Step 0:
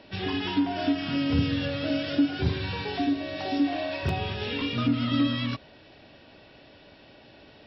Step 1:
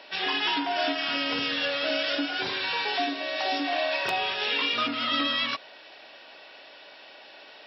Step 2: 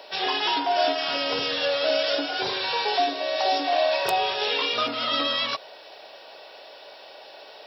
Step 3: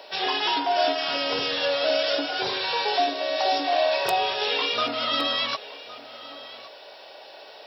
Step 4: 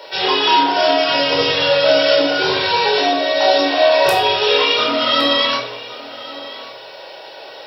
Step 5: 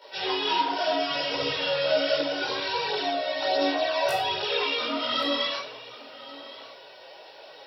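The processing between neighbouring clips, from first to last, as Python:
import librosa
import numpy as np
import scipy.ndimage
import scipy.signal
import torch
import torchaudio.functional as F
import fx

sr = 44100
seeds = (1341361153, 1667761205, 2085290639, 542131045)

y1 = scipy.signal.sosfilt(scipy.signal.butter(2, 720.0, 'highpass', fs=sr, output='sos'), x)
y1 = y1 * librosa.db_to_amplitude(7.5)
y2 = fx.curve_eq(y1, sr, hz=(130.0, 270.0, 440.0, 830.0, 1800.0, 2700.0, 4000.0, 6200.0, 9800.0), db=(0, -6, 6, 4, -4, -3, 2, 4, 12))
y2 = y2 * librosa.db_to_amplitude(2.0)
y3 = y2 + 10.0 ** (-17.5 / 20.0) * np.pad(y2, (int(1114 * sr / 1000.0), 0))[:len(y2)]
y4 = fx.room_shoebox(y3, sr, seeds[0], volume_m3=960.0, walls='furnished', distance_m=4.6)
y4 = y4 * librosa.db_to_amplitude(4.0)
y5 = fx.chorus_voices(y4, sr, voices=2, hz=0.68, base_ms=17, depth_ms=4.1, mix_pct=65)
y5 = y5 * librosa.db_to_amplitude(-9.0)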